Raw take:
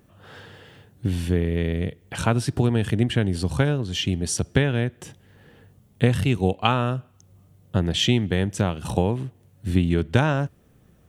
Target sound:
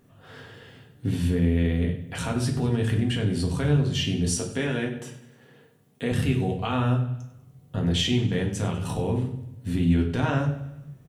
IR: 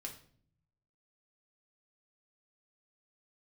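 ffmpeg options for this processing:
-filter_complex "[0:a]asettb=1/sr,asplit=3[s0][s1][s2];[s0]atrim=end=4.264[s3];[s1]atrim=start=4.26:end=6.12,asetpts=PTS-STARTPTS,afade=t=in:d=0.004:c=qsin,afade=t=out:st=1.856:d=0.004:c=qsin,highpass=230[s4];[s2]atrim=start=6.116[s5];[s3][s4]acrossfade=d=0.004:c1=hsin:c2=qsin[s6];[s6][s5]acrossfade=d=0.004:c1=qsin:c2=hsin,alimiter=limit=0.2:level=0:latency=1:release=68,aecho=1:1:98|196|294|392|490:0.141|0.0763|0.0412|0.0222|0.012[s7];[1:a]atrim=start_sample=2205,asetrate=40572,aresample=44100[s8];[s7][s8]afir=irnorm=-1:irlink=0,volume=1.19"

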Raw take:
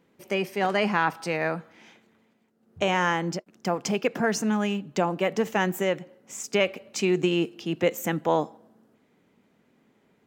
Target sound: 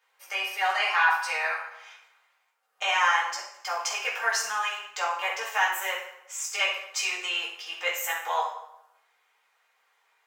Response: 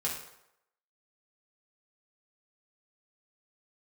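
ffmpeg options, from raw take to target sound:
-filter_complex "[0:a]highpass=f=870:w=0.5412,highpass=f=870:w=1.3066[s0];[1:a]atrim=start_sample=2205[s1];[s0][s1]afir=irnorm=-1:irlink=0"

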